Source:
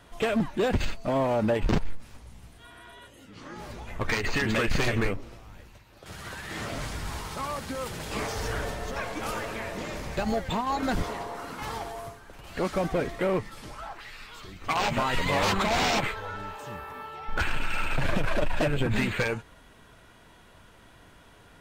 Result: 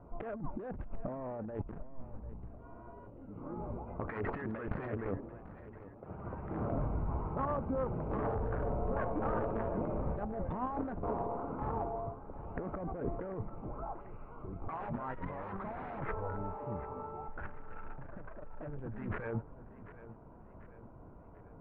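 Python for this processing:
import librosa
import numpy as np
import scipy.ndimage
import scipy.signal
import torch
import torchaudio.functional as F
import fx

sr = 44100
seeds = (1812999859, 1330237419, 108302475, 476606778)

y = fx.wiener(x, sr, points=25)
y = fx.highpass(y, sr, hz=130.0, slope=6, at=(3.77, 6.24))
y = fx.over_compress(y, sr, threshold_db=-34.0, ratio=-1.0)
y = scipy.signal.sosfilt(scipy.signal.butter(4, 1600.0, 'lowpass', fs=sr, output='sos'), y)
y = fx.echo_feedback(y, sr, ms=742, feedback_pct=50, wet_db=-15.5)
y = y * librosa.db_to_amplitude(-3.5)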